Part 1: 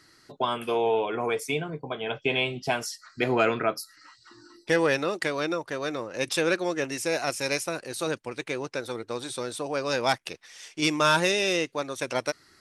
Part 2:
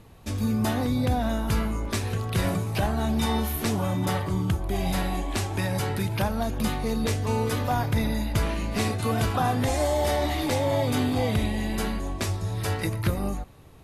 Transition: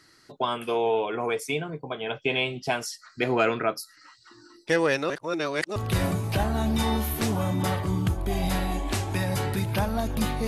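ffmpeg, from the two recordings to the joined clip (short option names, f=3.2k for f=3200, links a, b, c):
-filter_complex "[0:a]apad=whole_dur=10.47,atrim=end=10.47,asplit=2[a][b];[a]atrim=end=5.102[c];[b]atrim=start=5.098:end=5.762,asetpts=PTS-STARTPTS,areverse[d];[1:a]atrim=start=2.188:end=6.9[e];[c][d]acrossfade=d=0.004:c1=hsin:c2=hsin[f];[f][e]acrossfade=d=0.004:c1=hsin:c2=hsin"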